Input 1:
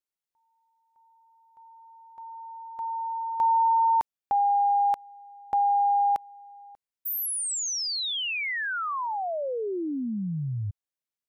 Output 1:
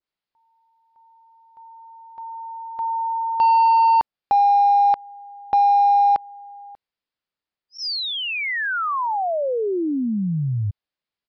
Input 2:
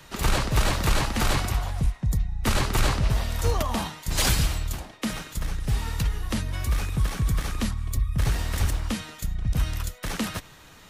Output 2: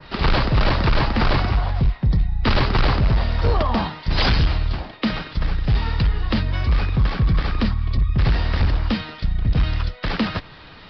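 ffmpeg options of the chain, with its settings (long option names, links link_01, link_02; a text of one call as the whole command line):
ffmpeg -i in.wav -af "adynamicequalizer=threshold=0.00631:dfrequency=3400:dqfactor=0.92:tfrequency=3400:tqfactor=0.92:attack=5:release=100:ratio=0.4:range=2.5:mode=cutabove:tftype=bell,aresample=11025,volume=20dB,asoftclip=hard,volume=-20dB,aresample=44100,volume=7.5dB" out.wav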